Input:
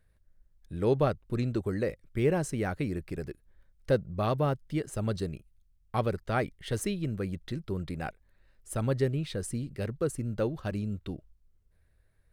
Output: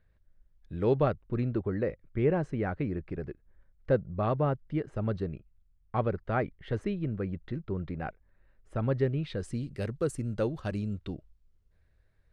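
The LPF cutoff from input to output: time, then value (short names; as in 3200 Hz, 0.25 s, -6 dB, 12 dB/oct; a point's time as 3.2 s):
0.86 s 3600 Hz
1.5 s 2000 Hz
8.76 s 2000 Hz
9.33 s 3600 Hz
9.77 s 9200 Hz
10.59 s 9200 Hz
11.11 s 5600 Hz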